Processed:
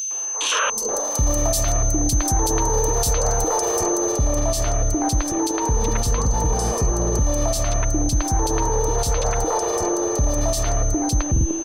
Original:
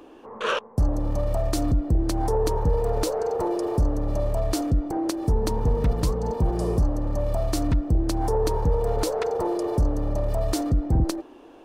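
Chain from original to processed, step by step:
drawn EQ curve 110 Hz 0 dB, 160 Hz −4 dB, 6,100 Hz +13 dB
three-band delay without the direct sound highs, mids, lows 110/410 ms, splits 460/2,800 Hz
brickwall limiter −19 dBFS, peak gain reduction 13.5 dB
steady tone 6,200 Hz −31 dBFS
high-shelf EQ 7,800 Hz +2 dB, from 0:04.12 −8 dB
level +6.5 dB

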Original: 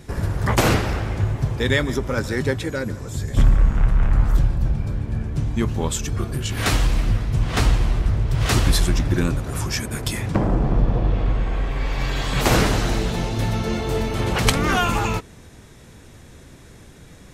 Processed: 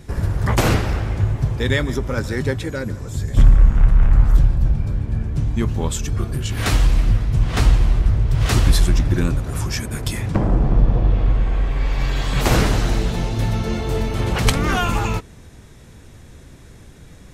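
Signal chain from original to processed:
low-shelf EQ 120 Hz +6 dB
level −1 dB

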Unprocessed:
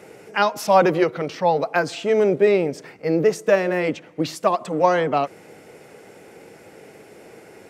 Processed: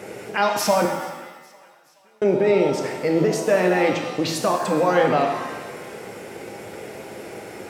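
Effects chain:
in parallel at +1.5 dB: downward compressor, threshold −27 dBFS, peak gain reduction 16 dB
on the sum: brickwall limiter −12 dBFS, peak gain reduction 10 dB
0:00.85–0:02.22: gate with flip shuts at −26 dBFS, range −41 dB
feedback echo with a high-pass in the loop 424 ms, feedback 57%, high-pass 560 Hz, level −23 dB
reverb with rising layers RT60 1.1 s, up +7 semitones, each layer −8 dB, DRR 3 dB

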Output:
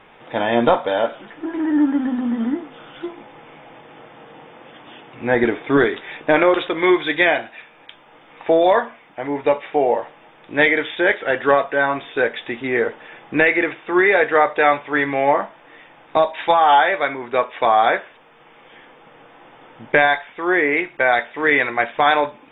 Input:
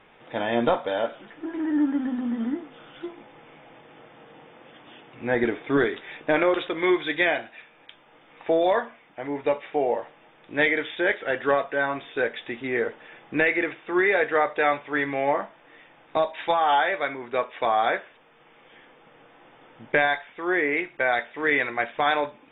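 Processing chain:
parametric band 930 Hz +2.5 dB
level +6 dB

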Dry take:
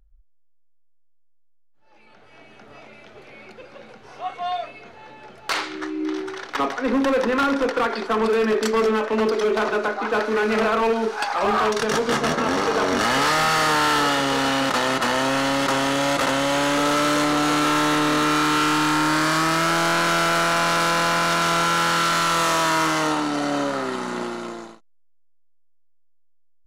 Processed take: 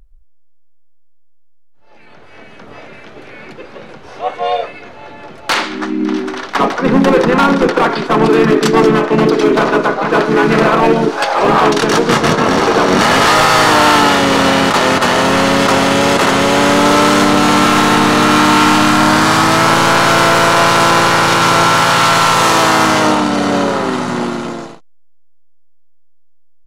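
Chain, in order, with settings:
pitch vibrato 12 Hz 9 cents
pitch-shifted copies added −7 semitones −5 dB, −4 semitones −5 dB
level +8 dB

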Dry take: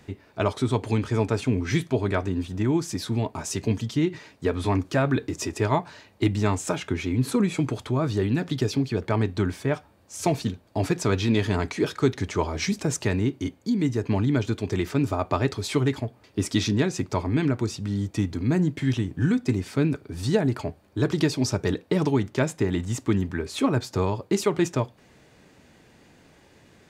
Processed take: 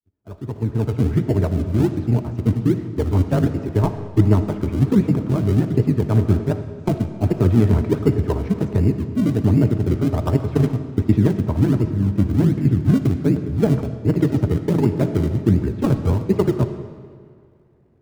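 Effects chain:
fade in at the beginning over 1.67 s
low-pass filter 1,200 Hz 12 dB per octave
in parallel at −8.5 dB: sample-and-hold swept by an LFO 35×, swing 100% 0.89 Hz
on the sum: time stretch by overlap-add 0.67×, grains 38 ms
low-shelf EQ 310 Hz +8 dB
convolution reverb RT60 3.0 s, pre-delay 20 ms, DRR 7.5 dB
multiband upward and downward expander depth 40%

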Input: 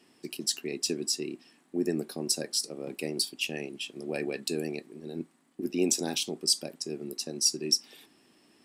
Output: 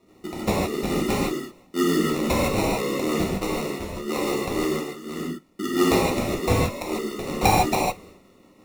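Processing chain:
0:05.95–0:07.28: Butterworth high-pass 180 Hz 48 dB per octave
sample-rate reduction 1,600 Hz, jitter 0%
rotating-speaker cabinet horn 6 Hz
reverb whose tail is shaped and stops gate 180 ms flat, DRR −5.5 dB
0:02.04–0:03.24: envelope flattener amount 50%
level +3.5 dB

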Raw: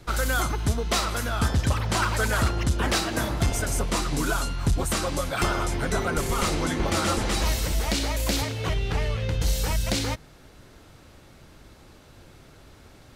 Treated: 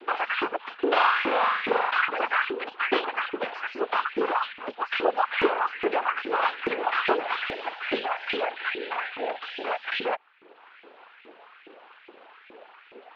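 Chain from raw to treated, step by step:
reverb reduction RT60 0.84 s
in parallel at +3 dB: downward compressor, threshold −33 dBFS, peak gain reduction 13.5 dB
on the sum: notch comb filter 750 Hz
cochlear-implant simulation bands 8
single-sideband voice off tune −56 Hz 280–3,300 Hz
0:00.75–0:01.91: flutter between parallel walls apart 7.3 metres, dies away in 1.2 s
auto-filter high-pass saw up 2.4 Hz 320–2,400 Hz

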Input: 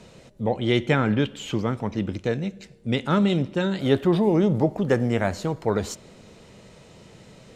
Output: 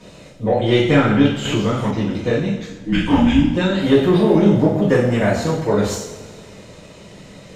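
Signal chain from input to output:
0:02.55–0:03.53: frequency shifter −440 Hz
in parallel at −5 dB: soft clipping −19 dBFS, distortion −11 dB
on the sum: coupled-rooms reverb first 0.62 s, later 2.3 s, from −17 dB, DRR −9 dB
0:01.45–0:01.91: multiband upward and downward compressor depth 70%
level −5 dB

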